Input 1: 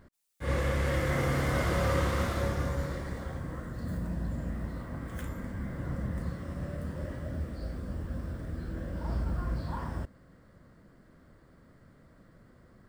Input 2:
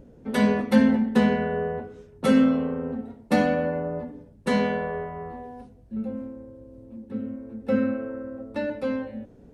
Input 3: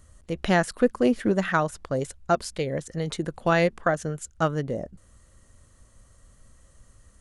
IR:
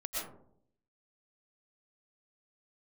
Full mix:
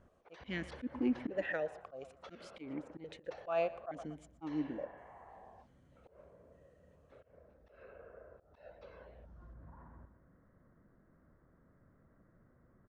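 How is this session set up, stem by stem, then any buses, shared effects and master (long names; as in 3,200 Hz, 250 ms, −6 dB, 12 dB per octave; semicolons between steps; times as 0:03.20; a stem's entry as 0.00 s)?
0:01.31 −9.5 dB → 0:01.52 −22.5 dB → 0:08.72 −22.5 dB → 0:09.52 −11 dB, 0.00 s, send −13.5 dB, echo send −8.5 dB, low-pass filter 1,800 Hz 24 dB per octave; downward compressor, threshold −38 dBFS, peak gain reduction 13.5 dB; brickwall limiter −39 dBFS, peak gain reduction 10 dB
−13.0 dB, 0.00 s, no send, no echo send, Chebyshev band-pass filter 550–6,100 Hz, order 4; downward compressor 12 to 1, threshold −38 dBFS, peak gain reduction 16.5 dB; random phases in short frames
0.0 dB, 0.00 s, no send, echo send −19.5 dB, formant filter that steps through the vowels 2.3 Hz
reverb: on, RT60 0.65 s, pre-delay 80 ms
echo: repeating echo 120 ms, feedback 31%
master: volume swells 130 ms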